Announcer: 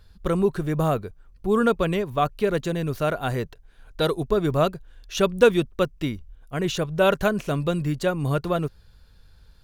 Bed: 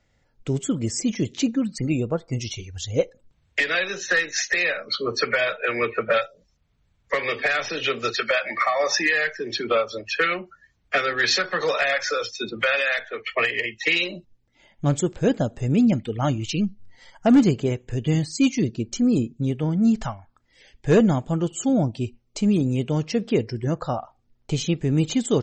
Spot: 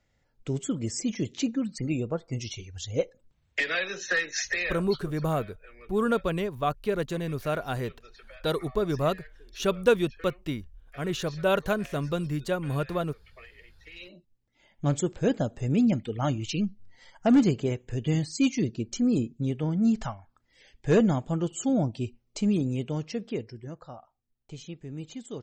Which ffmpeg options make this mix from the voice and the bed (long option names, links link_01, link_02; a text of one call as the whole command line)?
ffmpeg -i stem1.wav -i stem2.wav -filter_complex "[0:a]adelay=4450,volume=-5dB[link_01];[1:a]volume=18.5dB,afade=type=out:start_time=4.45:duration=0.72:silence=0.0707946,afade=type=in:start_time=13.93:duration=0.91:silence=0.0630957,afade=type=out:start_time=22.42:duration=1.37:silence=0.223872[link_02];[link_01][link_02]amix=inputs=2:normalize=0" out.wav